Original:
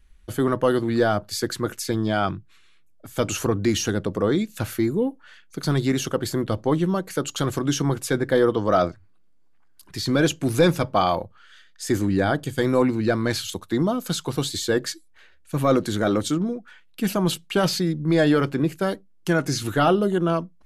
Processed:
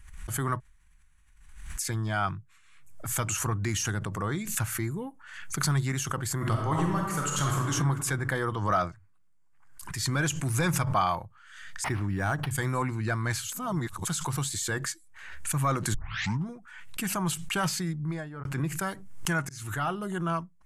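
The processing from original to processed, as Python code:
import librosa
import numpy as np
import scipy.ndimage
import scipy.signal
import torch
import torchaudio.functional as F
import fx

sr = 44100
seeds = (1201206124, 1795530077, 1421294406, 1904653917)

y = fx.reverb_throw(x, sr, start_s=6.36, length_s=1.34, rt60_s=1.3, drr_db=-1.0)
y = fx.resample_linear(y, sr, factor=6, at=(11.84, 12.51))
y = fx.studio_fade_out(y, sr, start_s=17.89, length_s=0.56)
y = fx.edit(y, sr, fx.room_tone_fill(start_s=0.6, length_s=1.17),
    fx.reverse_span(start_s=13.52, length_s=0.55),
    fx.tape_start(start_s=15.94, length_s=0.53),
    fx.fade_in_span(start_s=19.49, length_s=0.67), tone=tone)
y = fx.graphic_eq(y, sr, hz=(125, 250, 500, 1000, 2000, 4000, 8000), db=(7, -7, -10, 6, 4, -7, 9))
y = fx.pre_swell(y, sr, db_per_s=56.0)
y = y * librosa.db_to_amplitude(-6.5)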